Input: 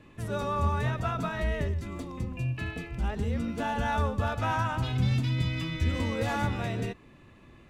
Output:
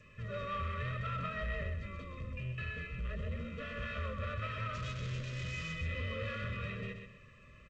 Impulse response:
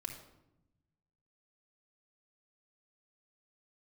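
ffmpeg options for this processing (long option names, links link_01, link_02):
-filter_complex "[0:a]asoftclip=type=tanh:threshold=-31.5dB,lowpass=frequency=2700:width_type=q:width=1.9,aecho=1:1:1.6:0.81,asplit=3[link_01][link_02][link_03];[link_01]afade=type=out:start_time=4.73:duration=0.02[link_04];[link_02]acrusher=bits=5:mix=0:aa=0.5,afade=type=in:start_time=4.73:duration=0.02,afade=type=out:start_time=5.72:duration=0.02[link_05];[link_03]afade=type=in:start_time=5.72:duration=0.02[link_06];[link_04][link_05][link_06]amix=inputs=3:normalize=0,asuperstop=centerf=800:order=12:qfactor=2.1,asplit=3[link_07][link_08][link_09];[link_07]afade=type=out:start_time=1.85:duration=0.02[link_10];[link_08]bandreject=frequency=60:width_type=h:width=6,bandreject=frequency=120:width_type=h:width=6,bandreject=frequency=180:width_type=h:width=6,bandreject=frequency=240:width_type=h:width=6,bandreject=frequency=300:width_type=h:width=6,bandreject=frequency=360:width_type=h:width=6,bandreject=frequency=420:width_type=h:width=6,afade=type=in:start_time=1.85:duration=0.02,afade=type=out:start_time=2.92:duration=0.02[link_11];[link_09]afade=type=in:start_time=2.92:duration=0.02[link_12];[link_10][link_11][link_12]amix=inputs=3:normalize=0,asplit=2[link_13][link_14];[link_14]aecho=0:1:128|256|384|512:0.447|0.13|0.0376|0.0109[link_15];[link_13][link_15]amix=inputs=2:normalize=0,volume=-7.5dB" -ar 16000 -c:a g722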